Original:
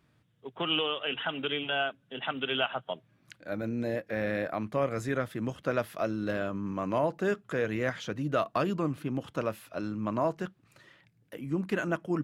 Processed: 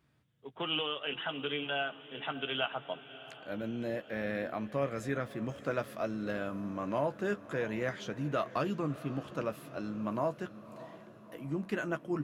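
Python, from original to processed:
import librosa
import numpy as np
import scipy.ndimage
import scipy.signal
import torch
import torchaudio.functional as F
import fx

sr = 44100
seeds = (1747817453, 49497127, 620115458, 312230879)

y = fx.median_filter(x, sr, points=3, at=(5.26, 5.88))
y = fx.doubler(y, sr, ms=14.0, db=-9.5)
y = fx.echo_diffused(y, sr, ms=631, feedback_pct=54, wet_db=-15.5)
y = y * librosa.db_to_amplitude(-4.5)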